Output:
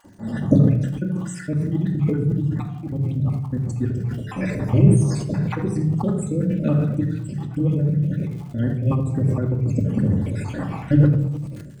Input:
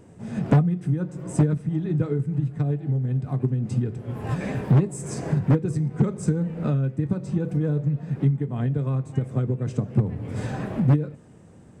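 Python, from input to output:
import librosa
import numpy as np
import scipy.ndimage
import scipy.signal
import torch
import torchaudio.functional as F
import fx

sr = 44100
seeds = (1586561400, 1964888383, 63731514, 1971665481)

y = fx.spec_dropout(x, sr, seeds[0], share_pct=63)
y = fx.high_shelf(y, sr, hz=4300.0, db=11.5, at=(9.86, 10.3))
y = fx.dmg_crackle(y, sr, seeds[1], per_s=110.0, level_db=-49.0)
y = fx.dispersion(y, sr, late='highs', ms=53.0, hz=950.0, at=(7.47, 8.27))
y = y + 10.0 ** (-17.0 / 20.0) * np.pad(y, (int(76 * sr / 1000.0), 0))[:len(y)]
y = fx.room_shoebox(y, sr, seeds[2], volume_m3=2300.0, walls='furnished', distance_m=2.4)
y = fx.sustainer(y, sr, db_per_s=44.0)
y = F.gain(torch.from_numpy(y), 3.0).numpy()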